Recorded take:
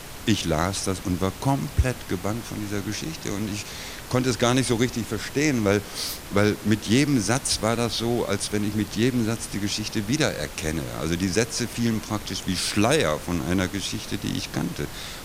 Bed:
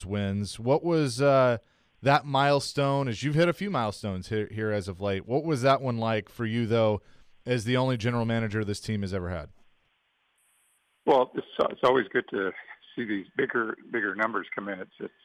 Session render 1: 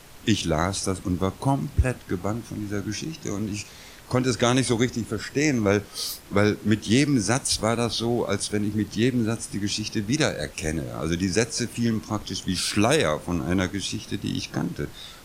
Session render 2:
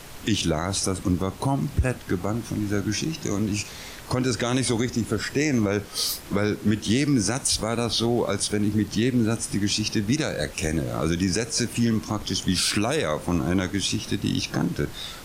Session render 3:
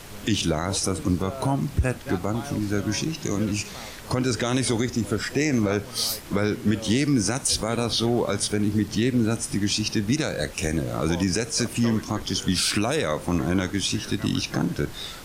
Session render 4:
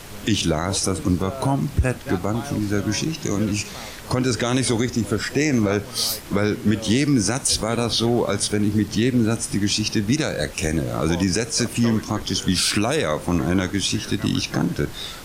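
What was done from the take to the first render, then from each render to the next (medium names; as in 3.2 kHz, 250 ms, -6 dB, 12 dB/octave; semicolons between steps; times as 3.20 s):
noise print and reduce 9 dB
in parallel at -0.5 dB: compression, threshold -29 dBFS, peak gain reduction 14 dB; on the sum: peak limiter -12 dBFS, peak gain reduction 8 dB
add bed -15 dB
trim +3 dB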